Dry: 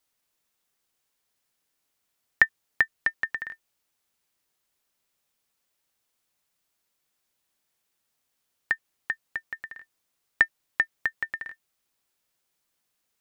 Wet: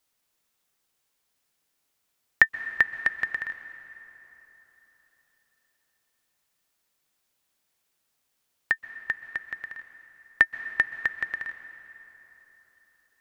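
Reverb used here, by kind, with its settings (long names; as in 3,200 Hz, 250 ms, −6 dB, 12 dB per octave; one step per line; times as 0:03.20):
dense smooth reverb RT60 4 s, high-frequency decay 0.65×, pre-delay 115 ms, DRR 12 dB
level +1.5 dB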